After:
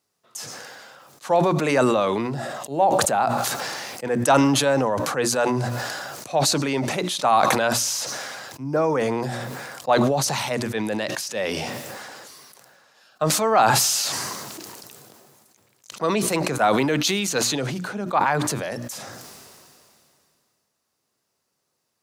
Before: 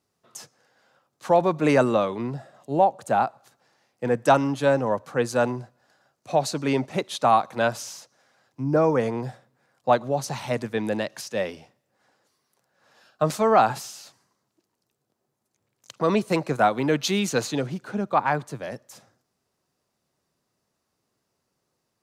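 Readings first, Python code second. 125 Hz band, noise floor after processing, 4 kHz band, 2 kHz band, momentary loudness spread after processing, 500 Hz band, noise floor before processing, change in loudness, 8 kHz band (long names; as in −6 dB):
+2.5 dB, −76 dBFS, +9.0 dB, +4.5 dB, 17 LU, +0.5 dB, −78 dBFS, +2.0 dB, +13.0 dB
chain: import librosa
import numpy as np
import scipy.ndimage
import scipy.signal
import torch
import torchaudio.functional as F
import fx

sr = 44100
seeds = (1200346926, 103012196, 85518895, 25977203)

y = fx.tilt_eq(x, sr, slope=1.5)
y = fx.hum_notches(y, sr, base_hz=60, count=6)
y = fx.sustainer(y, sr, db_per_s=23.0)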